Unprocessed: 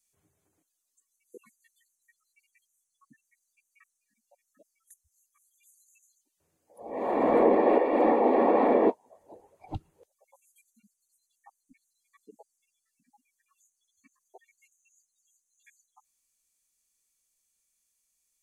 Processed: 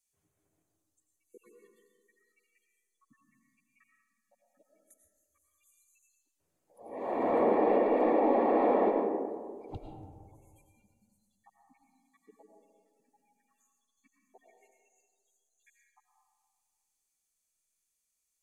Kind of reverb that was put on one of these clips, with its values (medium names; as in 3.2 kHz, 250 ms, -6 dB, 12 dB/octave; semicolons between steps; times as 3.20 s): algorithmic reverb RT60 1.8 s, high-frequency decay 0.3×, pre-delay 65 ms, DRR 1 dB; trim -6.5 dB